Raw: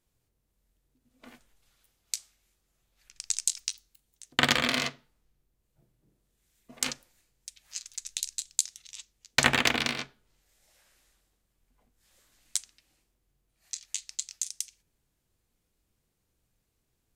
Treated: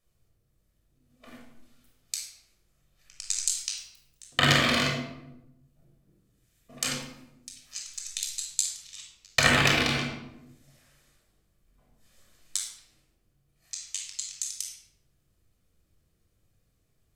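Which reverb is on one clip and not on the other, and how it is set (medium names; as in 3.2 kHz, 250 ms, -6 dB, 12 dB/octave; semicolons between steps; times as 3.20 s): simulated room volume 2900 m³, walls furnished, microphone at 6.1 m; trim -2.5 dB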